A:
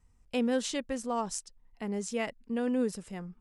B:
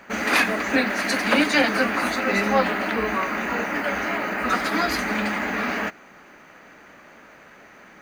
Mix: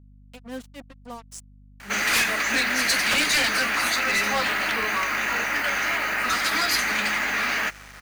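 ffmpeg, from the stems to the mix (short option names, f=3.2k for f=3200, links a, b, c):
-filter_complex "[0:a]equalizer=f=490:t=o:w=1.2:g=-5,tremolo=f=3.6:d=0.96,volume=-2.5dB[a];[1:a]tiltshelf=f=810:g=-10,volume=15dB,asoftclip=hard,volume=-15dB,adelay=1800,volume=-1dB[b];[a][b]amix=inputs=2:normalize=0,acrossover=split=380|3000[c][d][e];[d]acompressor=threshold=-25dB:ratio=2[f];[c][f][e]amix=inputs=3:normalize=0,acrusher=bits=6:mix=0:aa=0.5,aeval=exprs='val(0)+0.00355*(sin(2*PI*50*n/s)+sin(2*PI*2*50*n/s)/2+sin(2*PI*3*50*n/s)/3+sin(2*PI*4*50*n/s)/4+sin(2*PI*5*50*n/s)/5)':c=same"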